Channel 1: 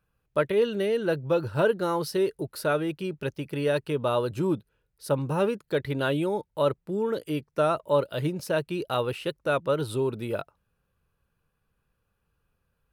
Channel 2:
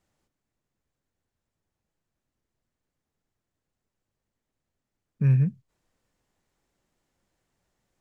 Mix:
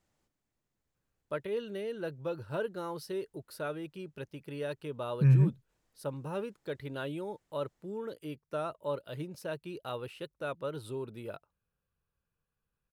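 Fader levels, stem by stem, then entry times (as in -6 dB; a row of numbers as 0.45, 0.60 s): -11.5, -2.0 dB; 0.95, 0.00 s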